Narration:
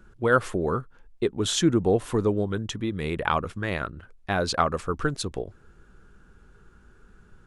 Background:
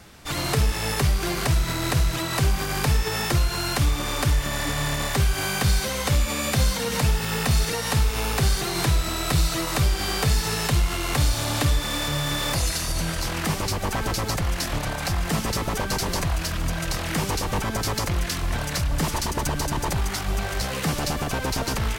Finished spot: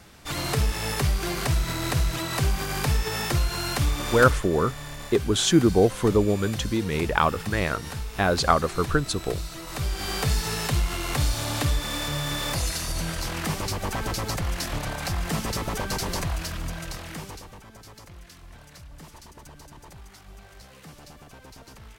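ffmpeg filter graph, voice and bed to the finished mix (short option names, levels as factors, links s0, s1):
-filter_complex "[0:a]adelay=3900,volume=1.41[s0];[1:a]volume=2.24,afade=t=out:st=4.21:d=0.25:silence=0.316228,afade=t=in:st=9.62:d=0.54:silence=0.334965,afade=t=out:st=16.19:d=1.38:silence=0.125893[s1];[s0][s1]amix=inputs=2:normalize=0"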